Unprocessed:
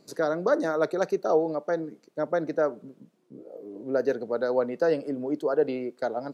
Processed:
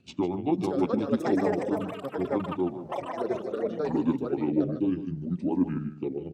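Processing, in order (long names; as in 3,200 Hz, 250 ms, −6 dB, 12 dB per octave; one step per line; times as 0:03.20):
pitch shift by two crossfaded delay taps −9 semitones
delay with pitch and tempo change per echo 582 ms, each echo +7 semitones, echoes 3
rotating-speaker cabinet horn 8 Hz, later 0.7 Hz, at 0:00.30
on a send: single-tap delay 151 ms −11.5 dB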